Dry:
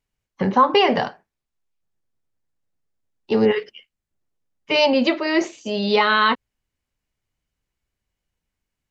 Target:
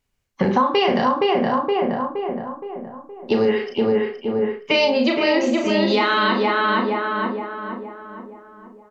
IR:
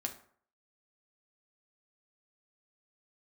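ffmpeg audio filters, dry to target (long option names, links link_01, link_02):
-filter_complex "[0:a]asplit=2[link_01][link_02];[link_02]adelay=469,lowpass=frequency=1800:poles=1,volume=-3dB,asplit=2[link_03][link_04];[link_04]adelay=469,lowpass=frequency=1800:poles=1,volume=0.51,asplit=2[link_05][link_06];[link_06]adelay=469,lowpass=frequency=1800:poles=1,volume=0.51,asplit=2[link_07][link_08];[link_08]adelay=469,lowpass=frequency=1800:poles=1,volume=0.51,asplit=2[link_09][link_10];[link_10]adelay=469,lowpass=frequency=1800:poles=1,volume=0.51,asplit=2[link_11][link_12];[link_12]adelay=469,lowpass=frequency=1800:poles=1,volume=0.51,asplit=2[link_13][link_14];[link_14]adelay=469,lowpass=frequency=1800:poles=1,volume=0.51[link_15];[link_01][link_03][link_05][link_07][link_09][link_11][link_13][link_15]amix=inputs=8:normalize=0,asplit=2[link_16][link_17];[1:a]atrim=start_sample=2205,afade=type=out:start_time=0.16:duration=0.01,atrim=end_sample=7497,adelay=35[link_18];[link_17][link_18]afir=irnorm=-1:irlink=0,volume=-3.5dB[link_19];[link_16][link_19]amix=inputs=2:normalize=0,acompressor=threshold=-20dB:ratio=6,volume=5dB"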